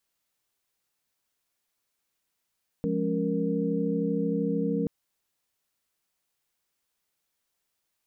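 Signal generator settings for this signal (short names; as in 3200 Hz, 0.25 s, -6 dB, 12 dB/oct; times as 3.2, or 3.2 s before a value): chord F3/G#3/C#4/A#4 sine, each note -30 dBFS 2.03 s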